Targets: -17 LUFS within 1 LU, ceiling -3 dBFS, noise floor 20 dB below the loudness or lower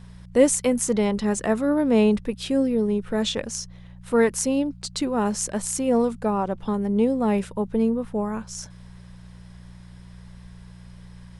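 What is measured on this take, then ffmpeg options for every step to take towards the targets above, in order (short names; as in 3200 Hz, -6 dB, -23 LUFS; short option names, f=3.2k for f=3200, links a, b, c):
hum 60 Hz; harmonics up to 180 Hz; hum level -42 dBFS; loudness -23.5 LUFS; peak -5.0 dBFS; loudness target -17.0 LUFS
-> -af "bandreject=f=60:t=h:w=4,bandreject=f=120:t=h:w=4,bandreject=f=180:t=h:w=4"
-af "volume=6.5dB,alimiter=limit=-3dB:level=0:latency=1"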